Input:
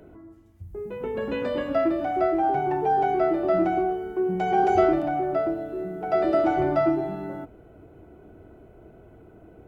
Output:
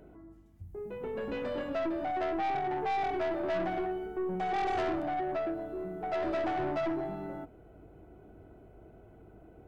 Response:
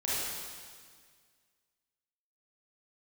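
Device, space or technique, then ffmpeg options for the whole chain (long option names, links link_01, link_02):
valve amplifier with mains hum: -filter_complex "[0:a]equalizer=frequency=770:width=6:gain=3.5,asettb=1/sr,asplit=3[link_01][link_02][link_03];[link_01]atrim=end=3.094[link_04];[link_02]atrim=start=3.09:end=4.07,asetpts=PTS-STARTPTS,afade=type=in:duration=0.004:curve=qsin,afade=type=out:start_time=0.976:duration=0.004:curve=qsin,asplit=2[link_05][link_06];[link_06]adelay=17,volume=-4dB[link_07];[link_05][link_07]amix=inputs=2:normalize=0,atrim=end_sample=43218[link_08];[link_03]atrim=start=4.066[link_09];[link_04][link_08]acrossfade=duration=0.004:curve1=hsin:curve2=qsin[link_10];[link_10][link_09]acrossfade=duration=0.004:curve1=qsin:curve2=hsin,aeval=exprs='(tanh(14.1*val(0)+0.2)-tanh(0.2))/14.1':channel_layout=same,aeval=exprs='val(0)+0.002*(sin(2*PI*50*n/s)+sin(2*PI*2*50*n/s)/2+sin(2*PI*3*50*n/s)/3+sin(2*PI*4*50*n/s)/4+sin(2*PI*5*50*n/s)/5)':channel_layout=same,volume=-5.5dB"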